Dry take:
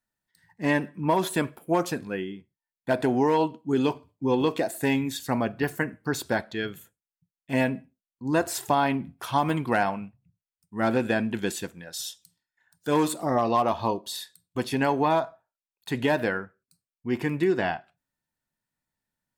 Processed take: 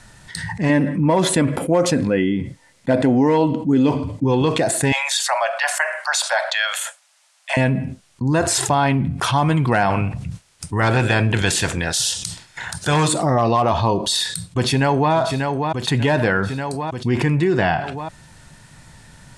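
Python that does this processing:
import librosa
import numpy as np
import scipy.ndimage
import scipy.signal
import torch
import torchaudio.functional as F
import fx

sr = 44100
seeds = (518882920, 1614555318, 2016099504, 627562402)

y = fx.small_body(x, sr, hz=(270.0, 520.0, 2000.0), ring_ms=45, db=11, at=(0.69, 4.24))
y = fx.steep_highpass(y, sr, hz=570.0, slope=96, at=(4.92, 7.57))
y = fx.spec_clip(y, sr, under_db=14, at=(9.89, 13.07), fade=0.02)
y = fx.echo_throw(y, sr, start_s=14.0, length_s=1.13, ms=590, feedback_pct=50, wet_db=-15.5)
y = scipy.signal.sosfilt(scipy.signal.butter(6, 10000.0, 'lowpass', fs=sr, output='sos'), y)
y = fx.low_shelf_res(y, sr, hz=180.0, db=6.0, q=1.5)
y = fx.env_flatten(y, sr, amount_pct=70)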